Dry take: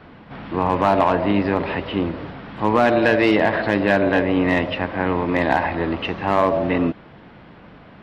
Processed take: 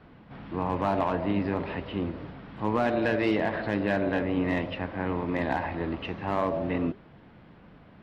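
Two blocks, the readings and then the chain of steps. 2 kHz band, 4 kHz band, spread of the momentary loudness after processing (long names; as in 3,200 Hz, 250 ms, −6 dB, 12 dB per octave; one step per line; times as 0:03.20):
−11.0 dB, −11.0 dB, 8 LU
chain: low-shelf EQ 290 Hz +5.5 dB
flanger 1.7 Hz, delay 3.8 ms, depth 6.6 ms, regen −83%
level −6.5 dB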